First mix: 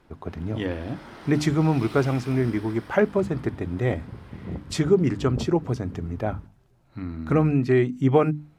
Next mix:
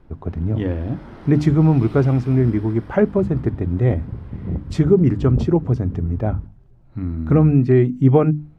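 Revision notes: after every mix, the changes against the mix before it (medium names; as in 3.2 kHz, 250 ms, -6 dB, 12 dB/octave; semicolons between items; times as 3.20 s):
master: add tilt EQ -3 dB/octave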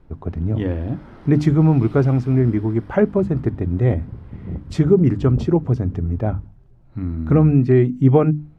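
background -4.0 dB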